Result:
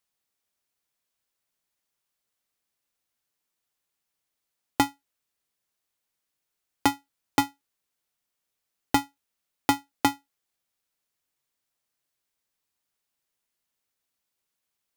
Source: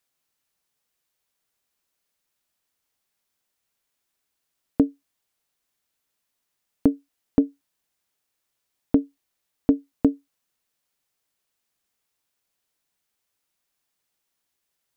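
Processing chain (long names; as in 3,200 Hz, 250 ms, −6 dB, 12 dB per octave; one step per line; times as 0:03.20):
ring modulator with a square carrier 560 Hz
level −4 dB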